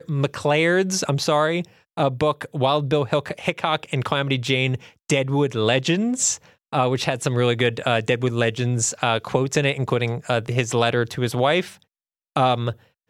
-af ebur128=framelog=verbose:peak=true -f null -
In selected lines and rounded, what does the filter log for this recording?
Integrated loudness:
  I:         -21.7 LUFS
  Threshold: -31.9 LUFS
Loudness range:
  LRA:         1.3 LU
  Threshold: -41.9 LUFS
  LRA low:   -22.6 LUFS
  LRA high:  -21.3 LUFS
True peak:
  Peak:       -4.1 dBFS